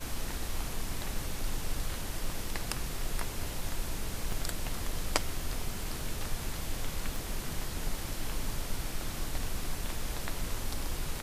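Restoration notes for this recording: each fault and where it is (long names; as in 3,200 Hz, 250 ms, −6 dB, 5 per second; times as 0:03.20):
0:04.32: drop-out 3.6 ms
0:07.16: click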